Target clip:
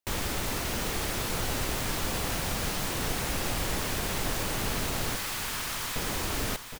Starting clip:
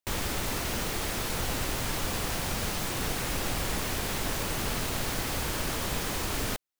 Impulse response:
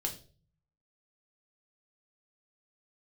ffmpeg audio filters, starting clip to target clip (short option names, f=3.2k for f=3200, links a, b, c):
-filter_complex "[0:a]asettb=1/sr,asplit=3[a][b][c];[a]atrim=end=5.164[d];[b]atrim=start=5.16:end=5.96,asetpts=PTS-STARTPTS,afade=t=in:d=0.004:c=qsin,afade=t=out:st=0.796:d=0.004:c=qsin,highpass=f=920:w=0.5412,highpass=f=920:w=1.3066[e];[c]atrim=start=5.956[f];[d][e]acrossfade=d=0.004:c1=hsin:c2=qsin[g];[g][f]acrossfade=d=0.004:c1=qsin:c2=hsin,aecho=1:1:764|1528|2292|3056:0.335|0.107|0.0343|0.011"